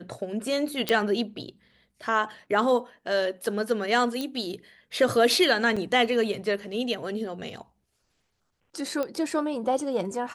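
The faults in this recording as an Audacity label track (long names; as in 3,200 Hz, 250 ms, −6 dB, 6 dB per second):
0.890000	0.890000	click −9 dBFS
4.210000	4.210000	click −17 dBFS
5.760000	5.770000	drop-out 5.6 ms
9.030000	9.030000	click −17 dBFS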